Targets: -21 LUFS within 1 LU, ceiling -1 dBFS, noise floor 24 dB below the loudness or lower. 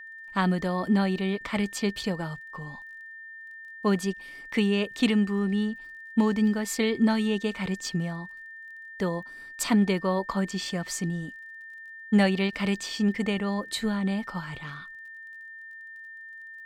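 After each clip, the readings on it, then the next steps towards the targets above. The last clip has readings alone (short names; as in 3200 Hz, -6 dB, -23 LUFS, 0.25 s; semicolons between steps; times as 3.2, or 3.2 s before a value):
ticks 28/s; steady tone 1800 Hz; tone level -41 dBFS; loudness -27.5 LUFS; peak -11.5 dBFS; loudness target -21.0 LUFS
-> de-click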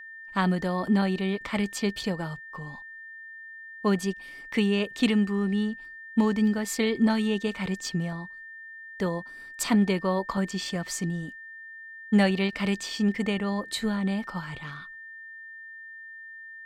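ticks 0/s; steady tone 1800 Hz; tone level -41 dBFS
-> notch 1800 Hz, Q 30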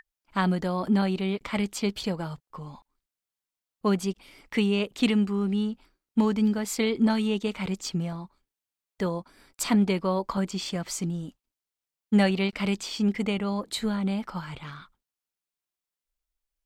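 steady tone none; loudness -27.5 LUFS; peak -12.0 dBFS; loudness target -21.0 LUFS
-> gain +6.5 dB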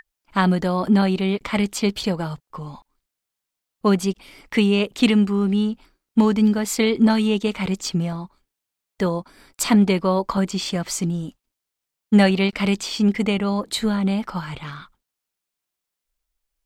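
loudness -21.0 LUFS; peak -5.5 dBFS; noise floor -84 dBFS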